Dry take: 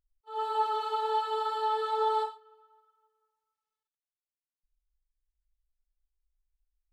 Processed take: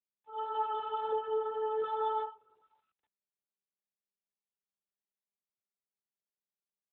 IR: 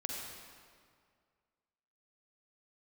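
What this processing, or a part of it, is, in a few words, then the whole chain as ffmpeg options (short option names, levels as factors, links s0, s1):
mobile call with aggressive noise cancelling: -filter_complex "[0:a]asettb=1/sr,asplit=3[s0][s1][s2];[s0]atrim=end=1.124[s3];[s1]atrim=start=1.12:end=1.84,asetpts=PTS-STARTPTS,afade=t=in:d=0.004:c=qsin,afade=t=out:st=0.716:d=0.004:c=qsin,equalizer=f=125:t=o:w=1:g=10,equalizer=f=250:t=o:w=1:g=-8,equalizer=f=500:t=o:w=1:g=12,equalizer=f=1000:t=o:w=1:g=-8,equalizer=f=4000:t=o:w=1:g=-8[s4];[s2]atrim=start=1.836[s5];[s3][s4]acrossfade=d=0.004:c1=hsin:c2=qsin[s6];[s6][s5]acrossfade=d=0.004:c1=qsin:c2=hsin,highpass=f=110:w=0.5412,highpass=f=110:w=1.3066,afftdn=nr=32:nf=-49,volume=0.631" -ar 8000 -c:a libopencore_amrnb -b:a 12200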